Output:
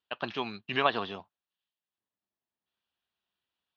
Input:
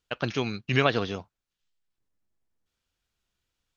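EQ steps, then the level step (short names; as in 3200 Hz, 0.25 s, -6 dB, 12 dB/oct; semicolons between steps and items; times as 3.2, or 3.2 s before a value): low shelf 310 Hz -9.5 dB; dynamic EQ 1000 Hz, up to +6 dB, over -41 dBFS, Q 1.9; speaker cabinet 120–3700 Hz, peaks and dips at 130 Hz -7 dB, 300 Hz -4 dB, 490 Hz -7 dB, 1400 Hz -6 dB, 2200 Hz -8 dB; 0.0 dB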